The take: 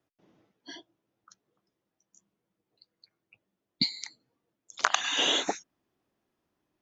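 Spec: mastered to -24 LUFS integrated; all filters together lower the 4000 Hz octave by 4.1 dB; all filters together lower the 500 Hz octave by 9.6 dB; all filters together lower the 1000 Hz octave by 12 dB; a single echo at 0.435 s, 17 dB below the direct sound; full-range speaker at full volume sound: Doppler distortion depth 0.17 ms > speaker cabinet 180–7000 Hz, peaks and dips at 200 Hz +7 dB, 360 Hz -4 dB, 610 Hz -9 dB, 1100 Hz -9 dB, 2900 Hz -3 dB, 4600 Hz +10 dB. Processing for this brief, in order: bell 500 Hz -4 dB; bell 1000 Hz -9 dB; bell 4000 Hz -8 dB; echo 0.435 s -17 dB; Doppler distortion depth 0.17 ms; speaker cabinet 180–7000 Hz, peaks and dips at 200 Hz +7 dB, 360 Hz -4 dB, 610 Hz -9 dB, 1100 Hz -9 dB, 2900 Hz -3 dB, 4600 Hz +10 dB; gain +9.5 dB

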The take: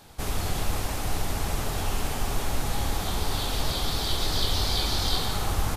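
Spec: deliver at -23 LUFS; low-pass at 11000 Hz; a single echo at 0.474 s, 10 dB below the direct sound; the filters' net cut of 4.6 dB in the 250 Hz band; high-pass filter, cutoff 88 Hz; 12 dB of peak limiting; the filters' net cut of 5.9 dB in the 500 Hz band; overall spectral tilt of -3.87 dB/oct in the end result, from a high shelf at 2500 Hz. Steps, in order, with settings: HPF 88 Hz; LPF 11000 Hz; bell 250 Hz -4.5 dB; bell 500 Hz -6 dB; high shelf 2500 Hz -8.5 dB; limiter -31.5 dBFS; echo 0.474 s -10 dB; gain +17 dB

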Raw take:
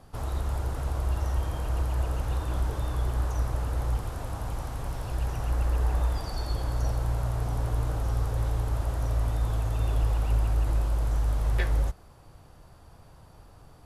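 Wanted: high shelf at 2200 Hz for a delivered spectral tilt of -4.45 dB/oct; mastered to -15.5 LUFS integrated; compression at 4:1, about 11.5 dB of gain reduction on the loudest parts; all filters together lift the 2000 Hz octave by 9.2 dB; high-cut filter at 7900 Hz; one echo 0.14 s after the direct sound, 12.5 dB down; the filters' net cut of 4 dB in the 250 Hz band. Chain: LPF 7900 Hz; bell 250 Hz -7 dB; bell 2000 Hz +7.5 dB; high shelf 2200 Hz +8.5 dB; compressor 4:1, threshold -35 dBFS; echo 0.14 s -12.5 dB; gain +23.5 dB

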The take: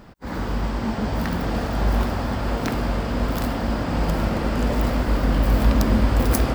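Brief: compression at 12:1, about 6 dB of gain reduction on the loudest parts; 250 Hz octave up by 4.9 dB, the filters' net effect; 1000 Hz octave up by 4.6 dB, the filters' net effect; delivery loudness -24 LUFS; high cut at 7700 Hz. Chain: LPF 7700 Hz; bell 250 Hz +5.5 dB; bell 1000 Hz +5.5 dB; compressor 12:1, threshold -17 dBFS; gain -0.5 dB

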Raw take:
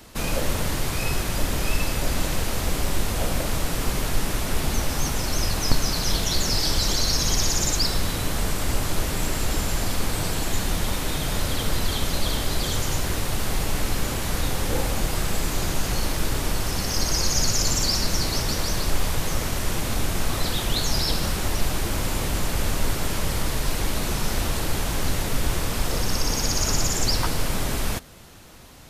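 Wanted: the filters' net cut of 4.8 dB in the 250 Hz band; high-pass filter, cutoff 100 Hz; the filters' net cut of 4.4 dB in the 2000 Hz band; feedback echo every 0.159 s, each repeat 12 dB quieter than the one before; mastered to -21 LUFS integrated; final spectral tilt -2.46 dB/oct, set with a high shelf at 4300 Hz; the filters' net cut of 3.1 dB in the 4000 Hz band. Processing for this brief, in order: HPF 100 Hz; bell 250 Hz -6.5 dB; bell 2000 Hz -5 dB; bell 4000 Hz -6 dB; high shelf 4300 Hz +4.5 dB; feedback echo 0.159 s, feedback 25%, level -12 dB; gain +5.5 dB

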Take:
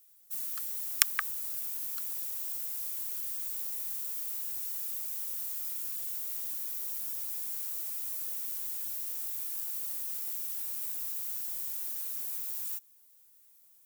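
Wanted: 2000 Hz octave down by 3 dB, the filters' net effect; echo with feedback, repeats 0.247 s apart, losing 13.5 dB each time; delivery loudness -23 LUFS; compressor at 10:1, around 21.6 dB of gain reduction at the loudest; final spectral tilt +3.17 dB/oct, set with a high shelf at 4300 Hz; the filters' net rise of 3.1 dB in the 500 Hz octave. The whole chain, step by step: bell 500 Hz +4 dB; bell 2000 Hz -5.5 dB; high shelf 4300 Hz +7.5 dB; compressor 10:1, threshold -36 dBFS; feedback echo 0.247 s, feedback 21%, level -13.5 dB; gain +13 dB

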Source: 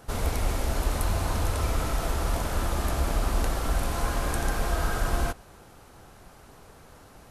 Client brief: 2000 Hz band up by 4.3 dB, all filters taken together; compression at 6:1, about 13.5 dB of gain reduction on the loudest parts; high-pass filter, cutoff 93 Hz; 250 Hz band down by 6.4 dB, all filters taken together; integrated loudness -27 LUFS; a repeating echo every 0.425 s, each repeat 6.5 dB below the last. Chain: HPF 93 Hz; bell 250 Hz -9 dB; bell 2000 Hz +6 dB; compressor 6:1, threshold -42 dBFS; feedback echo 0.425 s, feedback 47%, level -6.5 dB; gain +16.5 dB

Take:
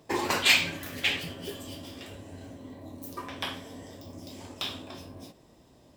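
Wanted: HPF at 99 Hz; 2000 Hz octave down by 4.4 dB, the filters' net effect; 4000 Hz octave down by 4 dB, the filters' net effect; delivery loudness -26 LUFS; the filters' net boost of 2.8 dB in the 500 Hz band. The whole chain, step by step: HPF 99 Hz; bell 500 Hz +4 dB; bell 2000 Hz -4.5 dB; bell 4000 Hz -3.5 dB; gain +6.5 dB

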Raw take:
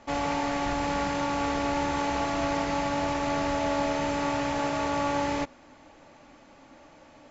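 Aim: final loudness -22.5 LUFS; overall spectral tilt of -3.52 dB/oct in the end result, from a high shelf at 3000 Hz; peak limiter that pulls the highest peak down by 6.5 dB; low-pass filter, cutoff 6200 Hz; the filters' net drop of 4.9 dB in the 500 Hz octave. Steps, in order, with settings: LPF 6200 Hz; bell 500 Hz -6.5 dB; high shelf 3000 Hz +9 dB; gain +9 dB; limiter -13.5 dBFS

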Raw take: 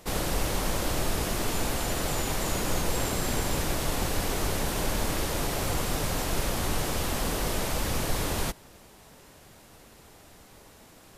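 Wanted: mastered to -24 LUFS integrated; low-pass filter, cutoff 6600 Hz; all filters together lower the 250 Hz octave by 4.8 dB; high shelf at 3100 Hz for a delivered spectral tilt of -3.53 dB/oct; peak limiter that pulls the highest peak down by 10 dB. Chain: LPF 6600 Hz; bell 250 Hz -7 dB; high shelf 3100 Hz +8.5 dB; gain +9 dB; limiter -14.5 dBFS

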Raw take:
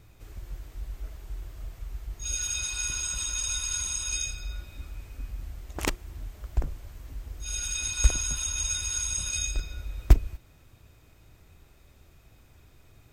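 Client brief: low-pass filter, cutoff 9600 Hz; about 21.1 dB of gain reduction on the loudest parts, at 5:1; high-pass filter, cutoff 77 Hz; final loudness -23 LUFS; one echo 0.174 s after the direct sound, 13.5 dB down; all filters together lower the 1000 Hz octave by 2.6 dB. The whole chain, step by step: HPF 77 Hz; LPF 9600 Hz; bell 1000 Hz -3.5 dB; compressor 5:1, threshold -42 dBFS; echo 0.174 s -13.5 dB; gain +20.5 dB

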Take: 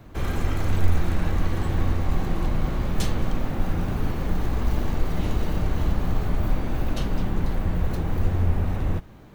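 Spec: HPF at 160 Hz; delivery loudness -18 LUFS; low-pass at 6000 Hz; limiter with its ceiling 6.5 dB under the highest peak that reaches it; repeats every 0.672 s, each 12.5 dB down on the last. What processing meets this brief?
HPF 160 Hz; LPF 6000 Hz; limiter -24.5 dBFS; feedback echo 0.672 s, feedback 24%, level -12.5 dB; gain +16 dB

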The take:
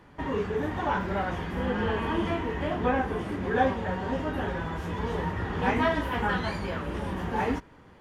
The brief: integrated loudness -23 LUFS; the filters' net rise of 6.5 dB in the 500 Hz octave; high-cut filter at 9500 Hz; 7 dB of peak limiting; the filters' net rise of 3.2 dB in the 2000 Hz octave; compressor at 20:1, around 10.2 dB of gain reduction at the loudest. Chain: LPF 9500 Hz; bell 500 Hz +7.5 dB; bell 2000 Hz +3.5 dB; compressor 20:1, threshold -24 dBFS; gain +9 dB; limiter -14 dBFS

